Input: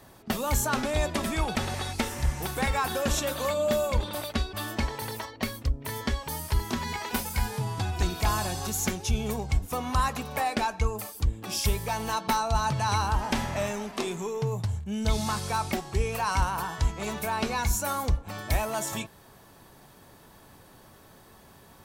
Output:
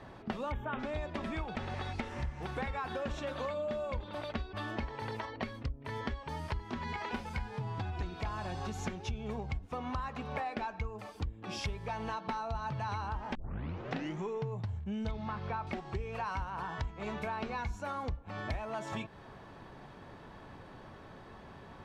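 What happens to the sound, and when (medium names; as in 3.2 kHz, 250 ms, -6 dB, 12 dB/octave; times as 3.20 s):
0.52–0.79 s: time-frequency box 3.8–12 kHz -24 dB
13.35 s: tape start 0.88 s
15.11–15.67 s: low-pass 2.9 kHz
whole clip: low-pass 2.8 kHz 12 dB/octave; compression 6:1, threshold -38 dBFS; trim +3 dB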